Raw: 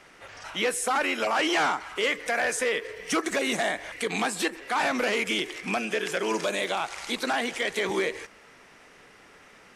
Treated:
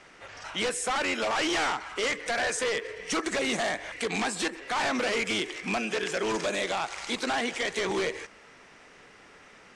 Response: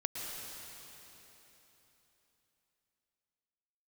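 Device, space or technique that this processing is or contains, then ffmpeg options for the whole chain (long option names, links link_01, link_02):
synthesiser wavefolder: -af "aeval=exprs='0.075*(abs(mod(val(0)/0.075+3,4)-2)-1)':channel_layout=same,lowpass=frequency=9000:width=0.5412,lowpass=frequency=9000:width=1.3066"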